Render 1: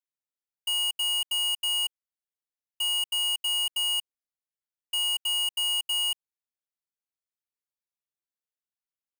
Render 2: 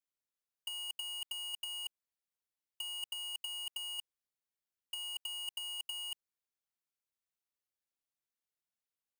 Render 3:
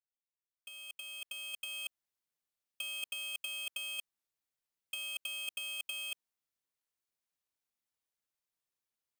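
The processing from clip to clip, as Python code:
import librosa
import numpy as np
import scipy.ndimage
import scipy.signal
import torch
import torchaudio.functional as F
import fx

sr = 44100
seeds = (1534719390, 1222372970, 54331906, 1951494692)

y1 = fx.over_compress(x, sr, threshold_db=-31.0, ratio=-0.5)
y1 = y1 * librosa.db_to_amplitude(-8.0)
y2 = fx.fade_in_head(y1, sr, length_s=1.98)
y2 = y2 * np.sin(2.0 * np.pi * 320.0 * np.arange(len(y2)) / sr)
y2 = y2 * librosa.db_to_amplitude(4.0)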